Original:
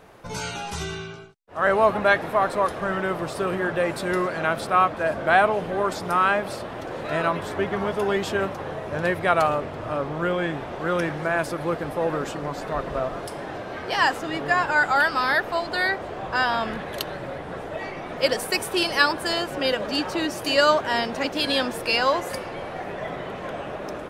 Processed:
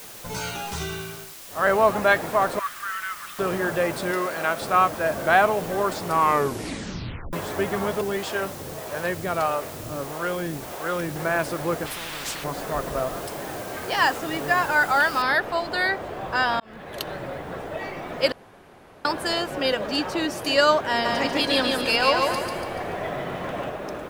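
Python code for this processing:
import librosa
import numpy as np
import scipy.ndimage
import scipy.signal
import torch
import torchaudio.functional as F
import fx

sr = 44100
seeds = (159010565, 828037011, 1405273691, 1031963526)

y = fx.ellip_bandpass(x, sr, low_hz=1200.0, high_hz=3400.0, order=3, stop_db=60, at=(2.59, 3.39))
y = fx.highpass(y, sr, hz=340.0, slope=6, at=(4.11, 4.62))
y = fx.harmonic_tremolo(y, sr, hz=1.6, depth_pct=70, crossover_hz=420.0, at=(8.01, 11.16))
y = fx.spectral_comp(y, sr, ratio=10.0, at=(11.85, 12.43), fade=0.02)
y = fx.noise_floor_step(y, sr, seeds[0], at_s=15.22, before_db=-42, after_db=-61, tilt_db=0.0)
y = fx.echo_feedback(y, sr, ms=144, feedback_pct=48, wet_db=-3.0, at=(21.04, 23.69), fade=0.02)
y = fx.edit(y, sr, fx.tape_stop(start_s=6.03, length_s=1.3),
    fx.fade_in_span(start_s=16.6, length_s=0.51),
    fx.room_tone_fill(start_s=18.32, length_s=0.73), tone=tone)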